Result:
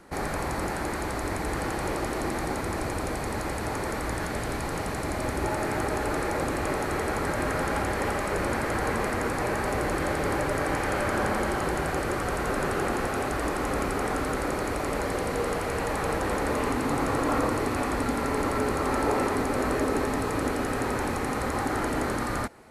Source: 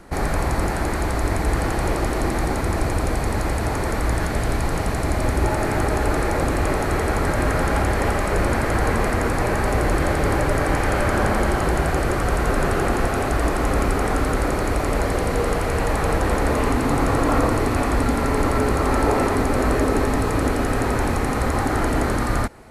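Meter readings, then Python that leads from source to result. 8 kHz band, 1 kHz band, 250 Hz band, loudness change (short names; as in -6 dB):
-5.0 dB, -5.5 dB, -6.5 dB, -6.5 dB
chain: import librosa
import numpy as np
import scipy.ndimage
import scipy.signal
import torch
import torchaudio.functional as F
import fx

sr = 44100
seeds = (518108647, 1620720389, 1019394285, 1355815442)

y = fx.low_shelf(x, sr, hz=92.0, db=-12.0)
y = fx.notch(y, sr, hz=680.0, q=21.0)
y = F.gain(torch.from_numpy(y), -5.0).numpy()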